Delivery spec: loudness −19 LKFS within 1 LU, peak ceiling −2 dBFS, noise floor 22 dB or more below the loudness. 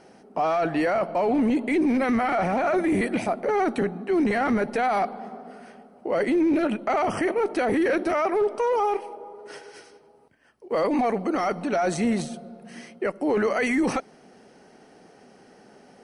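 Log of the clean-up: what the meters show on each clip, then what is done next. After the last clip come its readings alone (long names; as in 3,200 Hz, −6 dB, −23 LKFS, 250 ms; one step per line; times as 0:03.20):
share of clipped samples 0.7%; peaks flattened at −17.0 dBFS; integrated loudness −24.0 LKFS; sample peak −17.0 dBFS; target loudness −19.0 LKFS
→ clipped peaks rebuilt −17 dBFS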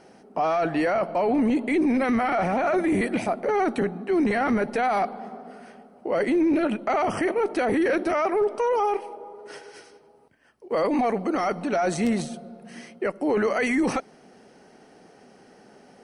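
share of clipped samples 0.0%; integrated loudness −24.0 LKFS; sample peak −10.0 dBFS; target loudness −19.0 LKFS
→ level +5 dB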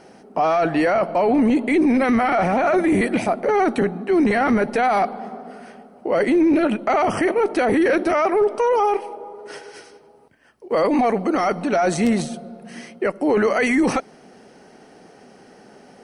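integrated loudness −19.0 LKFS; sample peak −5.0 dBFS; background noise floor −48 dBFS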